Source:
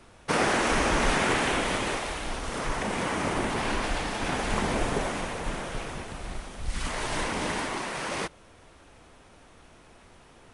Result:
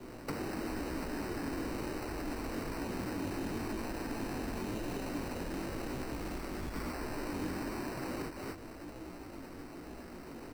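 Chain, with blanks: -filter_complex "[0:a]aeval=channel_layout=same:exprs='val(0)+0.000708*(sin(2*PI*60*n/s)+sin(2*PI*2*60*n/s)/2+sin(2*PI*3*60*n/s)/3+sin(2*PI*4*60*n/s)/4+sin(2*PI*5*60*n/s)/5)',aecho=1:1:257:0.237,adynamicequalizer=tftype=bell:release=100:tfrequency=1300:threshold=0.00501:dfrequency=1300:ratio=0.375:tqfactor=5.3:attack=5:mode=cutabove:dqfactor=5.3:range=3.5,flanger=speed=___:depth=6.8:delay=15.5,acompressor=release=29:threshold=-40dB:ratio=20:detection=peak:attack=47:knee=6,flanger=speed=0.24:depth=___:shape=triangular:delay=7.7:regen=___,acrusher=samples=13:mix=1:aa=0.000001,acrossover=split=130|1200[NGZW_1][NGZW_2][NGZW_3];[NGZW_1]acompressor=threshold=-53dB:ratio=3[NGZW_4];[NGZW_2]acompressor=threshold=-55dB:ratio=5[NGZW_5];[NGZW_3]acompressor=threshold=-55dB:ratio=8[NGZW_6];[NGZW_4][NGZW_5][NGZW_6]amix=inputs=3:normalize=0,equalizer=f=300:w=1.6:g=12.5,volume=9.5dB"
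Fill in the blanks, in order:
1, 6.1, -68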